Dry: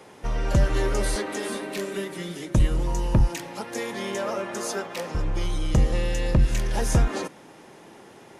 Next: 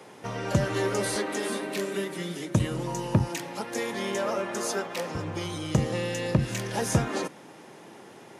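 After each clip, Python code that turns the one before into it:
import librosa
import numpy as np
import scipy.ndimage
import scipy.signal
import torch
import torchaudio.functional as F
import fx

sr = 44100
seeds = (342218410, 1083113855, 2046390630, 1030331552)

y = scipy.signal.sosfilt(scipy.signal.butter(4, 99.0, 'highpass', fs=sr, output='sos'), x)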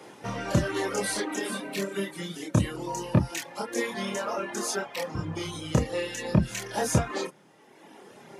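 y = fx.dereverb_blind(x, sr, rt60_s=1.6)
y = fx.chorus_voices(y, sr, voices=6, hz=0.25, base_ms=28, depth_ms=3.6, mix_pct=45)
y = F.gain(torch.from_numpy(y), 5.0).numpy()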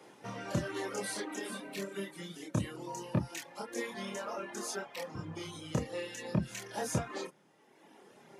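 y = scipy.signal.sosfilt(scipy.signal.butter(2, 94.0, 'highpass', fs=sr, output='sos'), x)
y = F.gain(torch.from_numpy(y), -8.5).numpy()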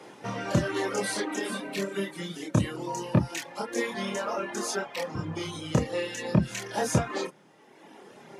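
y = fx.high_shelf(x, sr, hz=11000.0, db=-8.5)
y = F.gain(torch.from_numpy(y), 8.5).numpy()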